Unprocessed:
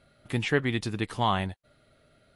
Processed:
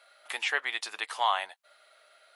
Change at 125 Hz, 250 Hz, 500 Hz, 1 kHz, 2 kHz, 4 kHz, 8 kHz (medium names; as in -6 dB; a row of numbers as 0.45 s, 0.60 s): under -40 dB, under -25 dB, -10.0 dB, +0.5 dB, +1.5 dB, +1.5 dB, +2.5 dB